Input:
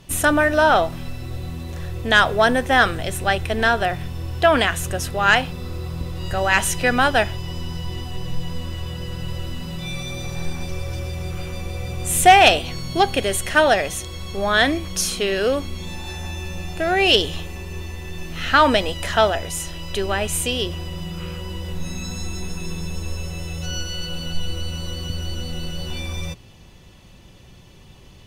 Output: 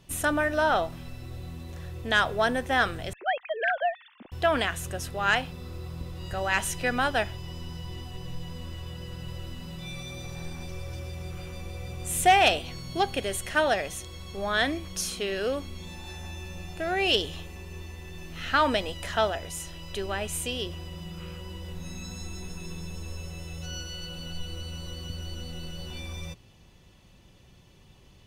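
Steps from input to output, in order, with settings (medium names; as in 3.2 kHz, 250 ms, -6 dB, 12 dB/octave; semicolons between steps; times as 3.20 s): 3.13–4.32 s: formants replaced by sine waves; Chebyshev shaper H 2 -29 dB, 7 -44 dB, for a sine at -2.5 dBFS; trim -8.5 dB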